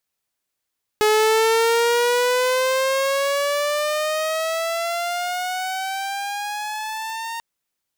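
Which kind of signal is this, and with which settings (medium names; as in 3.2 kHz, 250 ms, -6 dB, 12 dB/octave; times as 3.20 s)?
gliding synth tone saw, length 6.39 s, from 424 Hz, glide +13.5 st, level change -13 dB, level -11.5 dB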